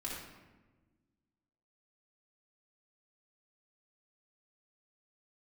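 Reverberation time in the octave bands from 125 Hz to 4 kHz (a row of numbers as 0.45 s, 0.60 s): 1.9 s, 2.0 s, 1.4 s, 1.1 s, 1.0 s, 0.75 s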